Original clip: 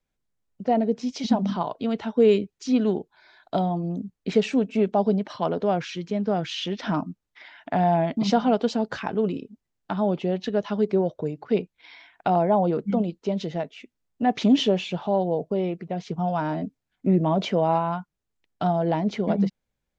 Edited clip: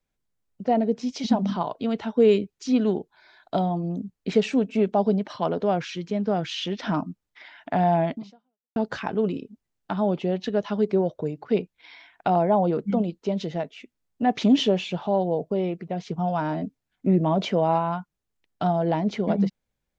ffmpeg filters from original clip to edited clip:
-filter_complex "[0:a]asplit=2[a][b];[a]atrim=end=8.76,asetpts=PTS-STARTPTS,afade=t=out:st=8.13:d=0.63:c=exp[c];[b]atrim=start=8.76,asetpts=PTS-STARTPTS,afade=t=in:d=0.004:c=hsin[d];[c][d]concat=n=2:v=0:a=1"

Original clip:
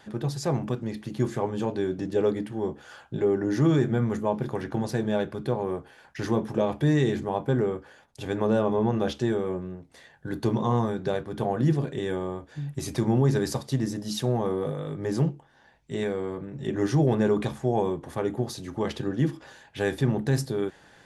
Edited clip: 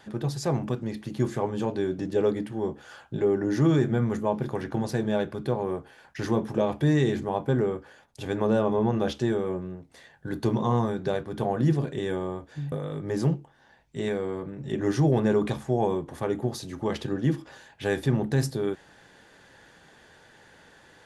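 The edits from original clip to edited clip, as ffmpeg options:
-filter_complex "[0:a]asplit=2[a][b];[a]atrim=end=12.722[c];[b]atrim=start=14.668[d];[c][d]acrossfade=d=0.004:c1=hsin:c2=hsin"

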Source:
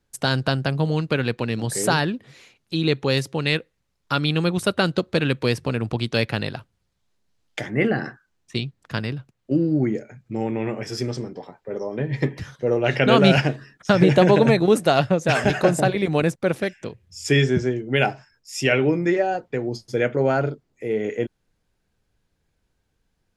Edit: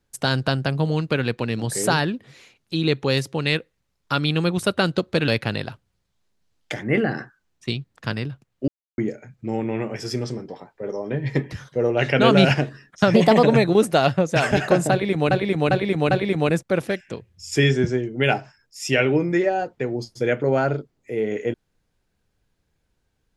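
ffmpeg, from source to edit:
-filter_complex "[0:a]asplit=9[a][b][c][d][e][f][g][h][i];[a]atrim=end=5.282[j];[b]atrim=start=6.148:end=9.55,asetpts=PTS-STARTPTS,afade=t=out:st=3.398:d=0.004:c=hsin[k];[c]atrim=start=9.55:end=9.85,asetpts=PTS-STARTPTS,volume=0[l];[d]atrim=start=9.85:end=14.014,asetpts=PTS-STARTPTS,afade=t=in:d=0.004:c=hsin[m];[e]atrim=start=14.01:end=14.36,asetpts=PTS-STARTPTS,asetrate=52920,aresample=44100,atrim=end_sample=12862,asetpts=PTS-STARTPTS[n];[f]atrim=start=14.356:end=16.242[o];[g]atrim=start=15.838:end=16.242[p];[h]atrim=start=15.838:end=16.242[q];[i]atrim=start=15.838[r];[k][l][m]concat=n=3:v=0:a=1[s];[j][s]acrossfade=d=0.004:c1=hsin:c2=hsin[t];[t][n]acrossfade=d=0.004:c1=hsin:c2=hsin[u];[u][o]acrossfade=d=0.004:c1=hsin:c2=hsin[v];[v][p]acrossfade=d=0.004:c1=hsin:c2=hsin[w];[w][q]acrossfade=d=0.004:c1=hsin:c2=hsin[x];[x][r]acrossfade=d=0.004:c1=hsin:c2=hsin"

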